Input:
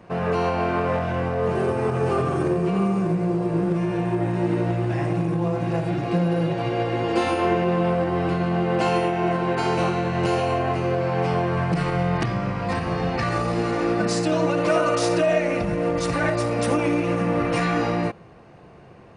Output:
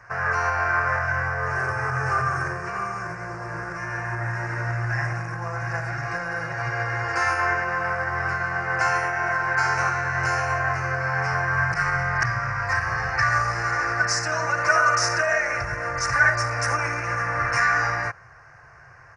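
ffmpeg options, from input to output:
-af "firequalizer=gain_entry='entry(130,0);entry(180,-23);entry(620,-5);entry(1600,15);entry(3400,-19);entry(5400,12);entry(8500,-3)':delay=0.05:min_phase=1,volume=-1dB"

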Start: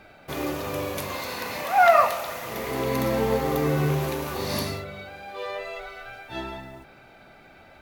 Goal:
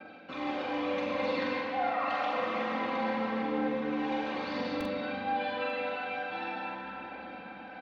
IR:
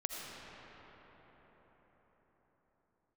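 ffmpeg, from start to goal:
-filter_complex "[0:a]aphaser=in_gain=1:out_gain=1:delay=1.4:decay=0.56:speed=0.84:type=triangular,lowpass=f=3.8k:w=0.5412,lowpass=f=3.8k:w=1.3066,areverse,acompressor=threshold=-34dB:ratio=4,areverse,agate=range=-33dB:threshold=-46dB:ratio=3:detection=peak[a];[1:a]atrim=start_sample=2205,asetrate=52920,aresample=44100[b];[a][b]afir=irnorm=-1:irlink=0,acrossover=split=130|2100[c][d][e];[c]acrusher=bits=3:dc=4:mix=0:aa=0.000001[f];[f][d][e]amix=inputs=3:normalize=0,aecho=1:1:3.8:0.83,aecho=1:1:44|893:0.596|0.106"

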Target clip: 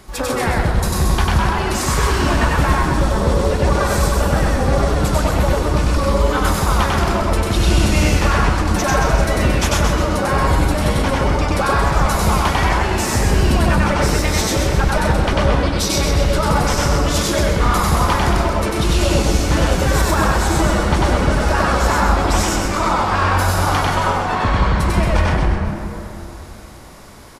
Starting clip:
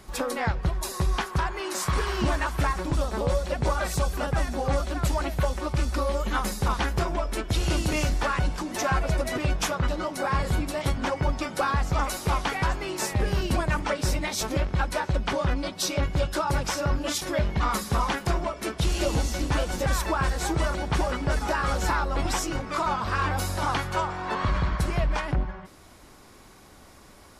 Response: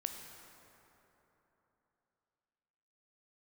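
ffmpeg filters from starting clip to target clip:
-filter_complex "[0:a]asplit=7[a][b][c][d][e][f][g];[b]adelay=130,afreqshift=-130,volume=-5.5dB[h];[c]adelay=260,afreqshift=-260,volume=-12.2dB[i];[d]adelay=390,afreqshift=-390,volume=-19dB[j];[e]adelay=520,afreqshift=-520,volume=-25.7dB[k];[f]adelay=650,afreqshift=-650,volume=-32.5dB[l];[g]adelay=780,afreqshift=-780,volume=-39.2dB[m];[a][h][i][j][k][l][m]amix=inputs=7:normalize=0,asplit=2[n][o];[1:a]atrim=start_sample=2205,adelay=96[p];[o][p]afir=irnorm=-1:irlink=0,volume=1dB[q];[n][q]amix=inputs=2:normalize=0,volume=5.5dB"

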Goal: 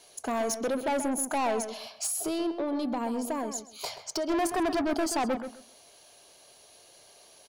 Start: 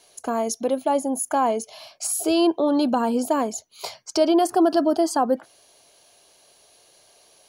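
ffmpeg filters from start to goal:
-filter_complex "[0:a]asettb=1/sr,asplit=3[a][b][c];[a]atrim=end=2.064[d];[b]atrim=start=2.06:end=4.3,asetpts=PTS-STARTPTS,afade=t=in:d=0.004:c=qsin,afade=t=out:st=2.236:d=0.004:c=qsin,acompressor=threshold=-27dB:ratio=4[e];[c]atrim=start=4.296[f];[d][e]acrossfade=d=0.004:c1=hsin:c2=qsin[g];[g][f]acrossfade=d=0.004:c1=qsin:c2=hsin,asoftclip=type=tanh:threshold=-25dB,asplit=2[h][i];[i]adelay=130,lowpass=f=2.4k:p=1,volume=-9dB,asplit=2[j][k];[k]adelay=130,lowpass=f=2.4k:p=1,volume=0.22,asplit=2[l][m];[m]adelay=130,lowpass=f=2.4k:p=1,volume=0.22[n];[h][j][l][n]amix=inputs=4:normalize=0"

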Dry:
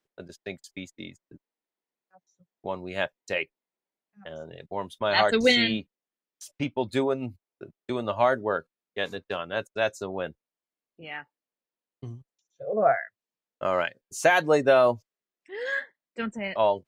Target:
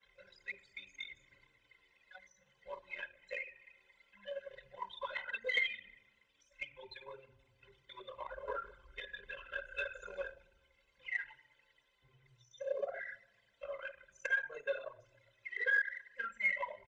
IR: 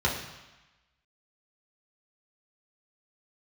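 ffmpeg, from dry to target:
-filter_complex "[0:a]aeval=exprs='val(0)+0.5*0.0237*sgn(val(0))':c=same,acrossover=split=410|2600|5800[a][b][c][d];[a]acompressor=threshold=-31dB:ratio=4[e];[b]acompressor=threshold=-31dB:ratio=4[f];[c]acompressor=threshold=-52dB:ratio=4[g];[d]acompressor=threshold=-53dB:ratio=4[h];[e][f][g][h]amix=inputs=4:normalize=0,agate=range=-33dB:threshold=-40dB:ratio=3:detection=peak,aderivative,asettb=1/sr,asplit=3[i][j][k];[i]atrim=end=8.004[l];[j]atrim=start=8:end=10.27,asetpts=PTS-STARTPTS,afade=t=in:d=0.004:c=qsin,afade=t=out:st=2.266:d=0.004:c=qsin,asplit=9[m][n][o][p][q][r][s][t][u];[n]adelay=151,afreqshift=-58,volume=-10.5dB[v];[o]adelay=302,afreqshift=-116,volume=-14.4dB[w];[p]adelay=453,afreqshift=-174,volume=-18.3dB[x];[q]adelay=604,afreqshift=-232,volume=-22.1dB[y];[r]adelay=755,afreqshift=-290,volume=-26dB[z];[s]adelay=906,afreqshift=-348,volume=-29.9dB[aa];[t]adelay=1057,afreqshift=-406,volume=-33.8dB[ab];[u]adelay=1208,afreqshift=-464,volume=-37.6dB[ac];[m][v][w][x][y][z][aa][ab][ac]amix=inputs=9:normalize=0,atrim=end_sample=100107[ad];[k]atrim=start=10.266[ae];[l][ad]acrossfade=d=0.004:c1=hsin:c2=qsin[af];[af][ae]acrossfade=d=0.004:c1=qsin:c2=hsin,flanger=delay=8.7:depth=6.3:regen=-62:speed=0.19:shape=sinusoidal,acompressor=threshold=-53dB:ratio=6,lowpass=8.3k,equalizer=f=350:t=o:w=3:g=-9.5,aecho=1:1:2:0.45[ag];[1:a]atrim=start_sample=2205,asetrate=23814,aresample=44100[ah];[ag][ah]afir=irnorm=-1:irlink=0,anlmdn=1,volume=13dB"

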